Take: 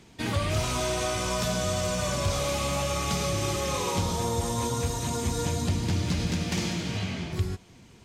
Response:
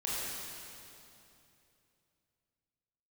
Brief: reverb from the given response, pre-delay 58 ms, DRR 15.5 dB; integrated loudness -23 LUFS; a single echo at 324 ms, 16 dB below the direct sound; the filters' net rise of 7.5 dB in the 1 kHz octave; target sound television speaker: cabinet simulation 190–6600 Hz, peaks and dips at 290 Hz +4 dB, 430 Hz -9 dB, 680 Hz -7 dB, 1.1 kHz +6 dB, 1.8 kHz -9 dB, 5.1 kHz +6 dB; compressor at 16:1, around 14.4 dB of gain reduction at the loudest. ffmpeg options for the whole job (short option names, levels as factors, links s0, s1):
-filter_complex "[0:a]equalizer=f=1000:t=o:g=6.5,acompressor=threshold=0.0158:ratio=16,aecho=1:1:324:0.158,asplit=2[s0][s1];[1:a]atrim=start_sample=2205,adelay=58[s2];[s1][s2]afir=irnorm=-1:irlink=0,volume=0.0891[s3];[s0][s3]amix=inputs=2:normalize=0,highpass=f=190:w=0.5412,highpass=f=190:w=1.3066,equalizer=f=290:t=q:w=4:g=4,equalizer=f=430:t=q:w=4:g=-9,equalizer=f=680:t=q:w=4:g=-7,equalizer=f=1100:t=q:w=4:g=6,equalizer=f=1800:t=q:w=4:g=-9,equalizer=f=5100:t=q:w=4:g=6,lowpass=f=6600:w=0.5412,lowpass=f=6600:w=1.3066,volume=7.5"